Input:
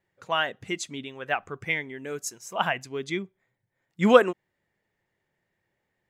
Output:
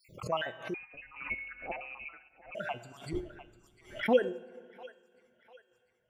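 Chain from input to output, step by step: random holes in the spectrogram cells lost 58%; on a send at -16 dB: reverberation RT60 2.3 s, pre-delay 13 ms; 3.13–4.03 s: on the sum: LPC vocoder at 8 kHz whisper; bass shelf 280 Hz +7.5 dB; feedback comb 120 Hz, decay 0.63 s, harmonics odd, mix 70%; two-band feedback delay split 600 Hz, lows 106 ms, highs 698 ms, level -15 dB; random-step tremolo 3.5 Hz; dynamic bell 750 Hz, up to +7 dB, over -59 dBFS, Q 1.3; 0.74–2.55 s: frequency inversion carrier 2.8 kHz; swell ahead of each attack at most 130 dB/s

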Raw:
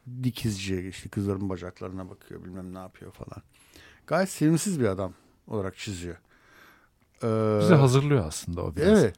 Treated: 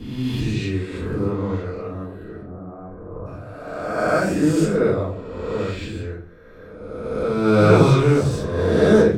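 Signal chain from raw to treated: reverse spectral sustain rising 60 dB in 1.84 s; 2.42–3.26 s: low-pass 1.3 kHz 24 dB/octave; reverberation RT60 0.45 s, pre-delay 4 ms, DRR -11 dB; tape noise reduction on one side only decoder only; trim -9.5 dB

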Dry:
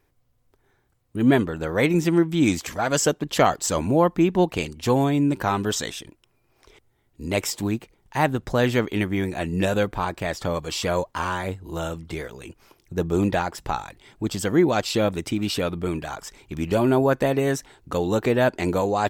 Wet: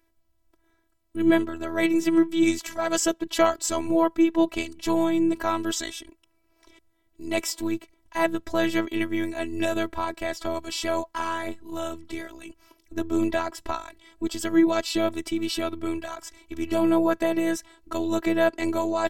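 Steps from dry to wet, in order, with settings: robot voice 328 Hz

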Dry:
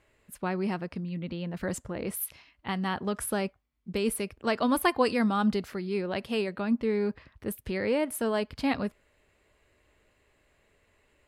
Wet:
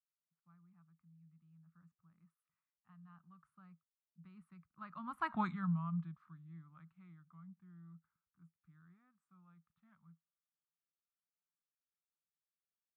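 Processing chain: Doppler pass-by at 4.66 s, 22 m/s, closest 1.2 m; tape speed -13%; two resonant band-passes 450 Hz, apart 2.9 oct; trim +8.5 dB

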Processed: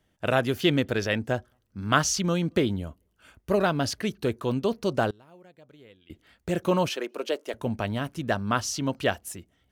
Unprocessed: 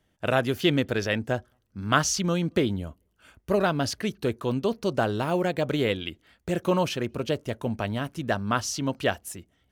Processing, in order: 5.10–6.10 s: inverted gate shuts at -26 dBFS, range -27 dB; 6.89–7.54 s: high-pass 330 Hz 24 dB/octave

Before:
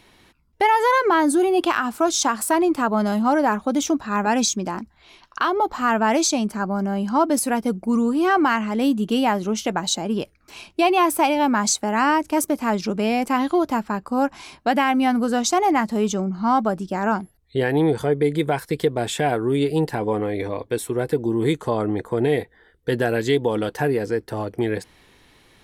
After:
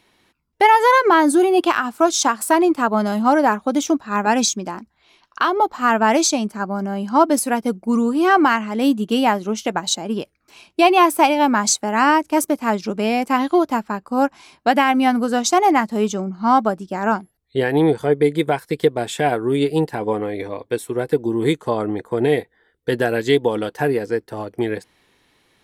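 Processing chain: bass shelf 86 Hz -10.5 dB; upward expansion 1.5:1, over -36 dBFS; trim +5.5 dB

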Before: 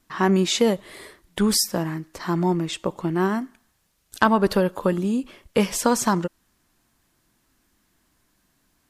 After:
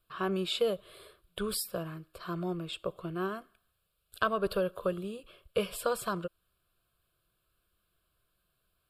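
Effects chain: static phaser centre 1.3 kHz, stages 8; trim -7 dB

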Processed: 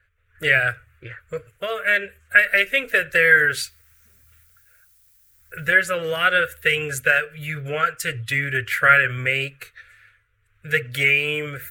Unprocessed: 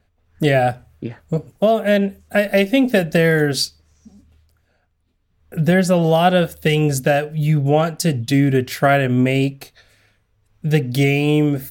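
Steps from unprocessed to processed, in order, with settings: coarse spectral quantiser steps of 15 dB; FFT filter 110 Hz 0 dB, 220 Hz -25 dB, 500 Hz 0 dB, 800 Hz -17 dB, 1.4 kHz +15 dB, 2.3 kHz +12 dB, 5.1 kHz -7 dB, 7.4 kHz +2 dB; 3.49–5.65 s: added noise violet -53 dBFS; trim -4.5 dB

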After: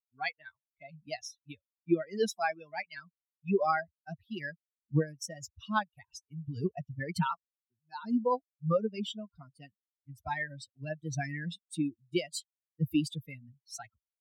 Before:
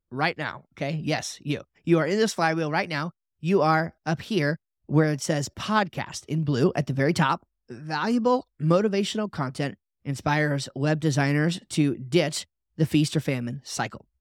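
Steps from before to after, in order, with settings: expander on every frequency bin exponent 3; trim -2.5 dB

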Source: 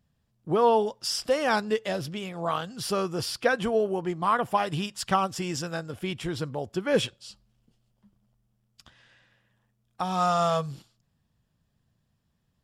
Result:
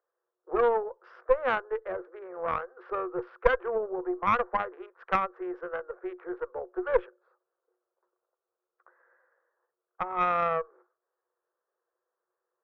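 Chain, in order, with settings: local Wiener filter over 15 samples; low-pass 1.6 kHz 24 dB/octave; in parallel at +3 dB: compression, threshold -32 dBFS, peak gain reduction 14.5 dB; on the sum: rippled Chebyshev high-pass 350 Hz, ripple 9 dB; Chebyshev shaper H 2 -6 dB, 7 -31 dB, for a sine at -10 dBFS

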